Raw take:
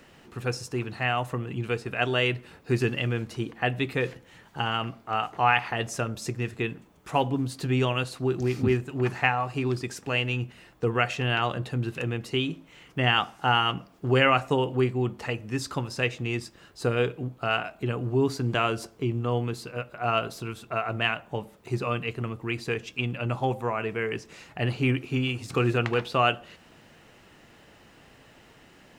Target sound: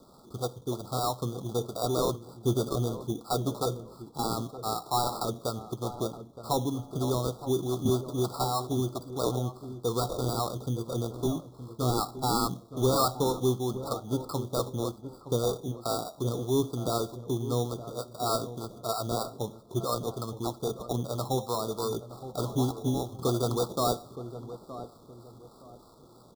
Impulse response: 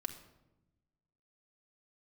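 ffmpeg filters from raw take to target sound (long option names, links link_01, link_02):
-filter_complex "[0:a]lowshelf=frequency=170:gain=-4.5,aresample=8000,volume=15.5dB,asoftclip=hard,volume=-15.5dB,aresample=44100,acrossover=split=560[link_01][link_02];[link_01]aeval=exprs='val(0)*(1-0.5/2+0.5/2*cos(2*PI*2.9*n/s))':channel_layout=same[link_03];[link_02]aeval=exprs='val(0)*(1-0.5/2-0.5/2*cos(2*PI*2.9*n/s))':channel_layout=same[link_04];[link_03][link_04]amix=inputs=2:normalize=0,atempo=1.1,acrusher=samples=14:mix=1:aa=0.000001,asoftclip=type=tanh:threshold=-18.5dB,asuperstop=centerf=2100:order=20:qfactor=1.1,asplit=2[link_05][link_06];[link_06]adelay=918,lowpass=frequency=1100:poles=1,volume=-12dB,asplit=2[link_07][link_08];[link_08]adelay=918,lowpass=frequency=1100:poles=1,volume=0.33,asplit=2[link_09][link_10];[link_10]adelay=918,lowpass=frequency=1100:poles=1,volume=0.33[link_11];[link_07][link_09][link_11]amix=inputs=3:normalize=0[link_12];[link_05][link_12]amix=inputs=2:normalize=0,volume=2dB"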